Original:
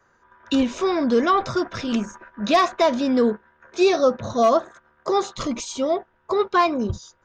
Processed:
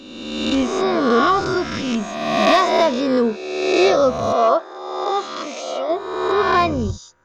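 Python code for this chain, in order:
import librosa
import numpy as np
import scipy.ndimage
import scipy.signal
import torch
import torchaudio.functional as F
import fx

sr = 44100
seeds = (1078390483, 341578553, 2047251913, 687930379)

y = fx.spec_swells(x, sr, rise_s=1.36)
y = fx.bandpass_edges(y, sr, low_hz=fx.line((4.32, 360.0), (5.88, 590.0)), high_hz=4100.0, at=(4.32, 5.88), fade=0.02)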